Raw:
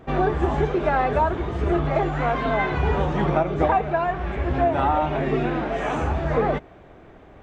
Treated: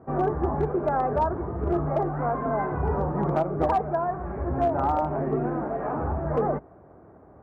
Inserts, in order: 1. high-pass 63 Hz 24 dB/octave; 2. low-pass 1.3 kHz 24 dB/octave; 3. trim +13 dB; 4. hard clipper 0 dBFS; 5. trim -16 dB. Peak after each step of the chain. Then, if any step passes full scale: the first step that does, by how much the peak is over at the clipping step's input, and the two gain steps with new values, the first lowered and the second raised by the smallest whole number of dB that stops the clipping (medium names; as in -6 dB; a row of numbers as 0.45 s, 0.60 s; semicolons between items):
-7.5 dBFS, -8.0 dBFS, +5.0 dBFS, 0.0 dBFS, -16.0 dBFS; step 3, 5.0 dB; step 3 +8 dB, step 5 -11 dB